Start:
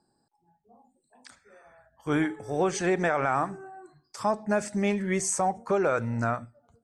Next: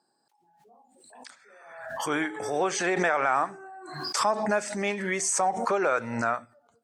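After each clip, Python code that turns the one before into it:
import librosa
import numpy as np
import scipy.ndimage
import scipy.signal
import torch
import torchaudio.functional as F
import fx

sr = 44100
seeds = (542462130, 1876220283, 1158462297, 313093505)

y = fx.weighting(x, sr, curve='A')
y = fx.pre_swell(y, sr, db_per_s=51.0)
y = y * librosa.db_to_amplitude(2.0)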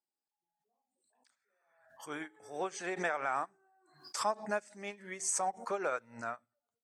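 y = fx.high_shelf(x, sr, hz=7400.0, db=6.5)
y = fx.upward_expand(y, sr, threshold_db=-35.0, expansion=2.5)
y = y * librosa.db_to_amplitude(-6.5)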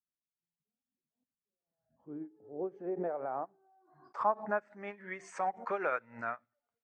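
y = fx.filter_sweep_lowpass(x, sr, from_hz=170.0, to_hz=2100.0, start_s=1.36, end_s=5.28, q=1.5)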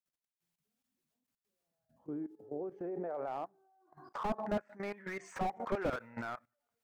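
y = fx.level_steps(x, sr, step_db=16)
y = fx.slew_limit(y, sr, full_power_hz=6.0)
y = y * librosa.db_to_amplitude(9.5)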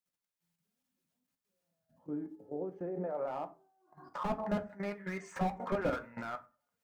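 y = fx.rev_fdn(x, sr, rt60_s=0.33, lf_ratio=1.2, hf_ratio=0.55, size_ms=33.0, drr_db=5.0)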